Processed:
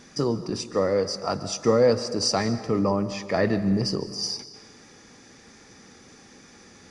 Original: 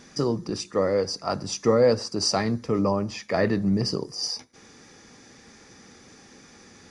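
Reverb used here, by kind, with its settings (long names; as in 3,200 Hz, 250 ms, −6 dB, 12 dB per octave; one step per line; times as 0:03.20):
comb and all-pass reverb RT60 1.4 s, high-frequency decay 0.8×, pre-delay 100 ms, DRR 13 dB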